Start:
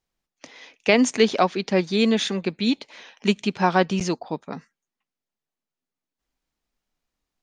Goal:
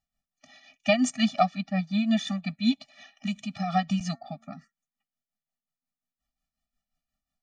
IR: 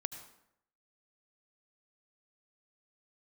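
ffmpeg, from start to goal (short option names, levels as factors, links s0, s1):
-filter_complex "[0:a]asettb=1/sr,asplit=3[s0][s1][s2];[s0]atrim=end=1.584[s3];[s1]atrim=start=1.58:end=2.11,asetpts=PTS-STARTPTS,afade=t=in:d=0.004:c=qsin,afade=t=out:st=0.526:d=0.004:c=qsin,aemphasis=mode=reproduction:type=75kf[s4];[s2]atrim=start=2.106[s5];[s3][s4]acrossfade=d=0.004:c1=hsin:c2=qsin[s6];[s6][s5]acrossfade=d=0.004:c1=qsin:c2=hsin,asettb=1/sr,asplit=3[s7][s8][s9];[s7]atrim=end=3.964[s10];[s8]atrim=start=3.96:end=4.56,asetpts=PTS-STARTPTS,afade=t=in:d=0.004:c=qsin,afade=t=out:st=0.596:d=0.004:c=qsin,bandreject=f=227.7:t=h:w=4,bandreject=f=455.4:t=h:w=4,bandreject=f=683.1:t=h:w=4,bandreject=f=910.8:t=h:w=4,bandreject=f=1138.5:t=h:w=4,bandreject=f=1366.2:t=h:w=4,bandreject=f=1593.9:t=h:w=4,bandreject=f=1821.6:t=h:w=4,bandreject=f=2049.3:t=h:w=4,bandreject=f=2277:t=h:w=4[s11];[s9]atrim=start=4.556[s12];[s10][s11]acrossfade=d=0.004:c1=hsin:c2=qsin[s13];[s13][s12]acrossfade=d=0.004:c1=qsin:c2=hsin,tremolo=f=5.6:d=0.66,afftfilt=real='re*eq(mod(floor(b*sr/1024/280),2),0)':imag='im*eq(mod(floor(b*sr/1024/280),2),0)':win_size=1024:overlap=0.75"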